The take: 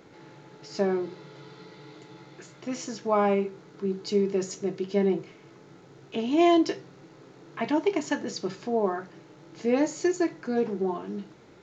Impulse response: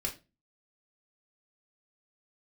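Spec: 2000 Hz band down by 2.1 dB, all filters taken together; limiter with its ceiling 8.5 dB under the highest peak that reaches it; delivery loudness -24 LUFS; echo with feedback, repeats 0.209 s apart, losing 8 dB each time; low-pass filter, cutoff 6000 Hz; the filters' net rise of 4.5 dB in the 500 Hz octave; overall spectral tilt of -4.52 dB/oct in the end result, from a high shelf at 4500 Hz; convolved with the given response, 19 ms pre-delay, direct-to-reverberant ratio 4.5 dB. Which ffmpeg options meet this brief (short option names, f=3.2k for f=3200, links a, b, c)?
-filter_complex "[0:a]lowpass=6k,equalizer=f=500:t=o:g=6.5,equalizer=f=2k:t=o:g=-3.5,highshelf=f=4.5k:g=3.5,alimiter=limit=-16dB:level=0:latency=1,aecho=1:1:209|418|627|836|1045:0.398|0.159|0.0637|0.0255|0.0102,asplit=2[a][b];[1:a]atrim=start_sample=2205,adelay=19[c];[b][c]afir=irnorm=-1:irlink=0,volume=-7dB[d];[a][d]amix=inputs=2:normalize=0,volume=1.5dB"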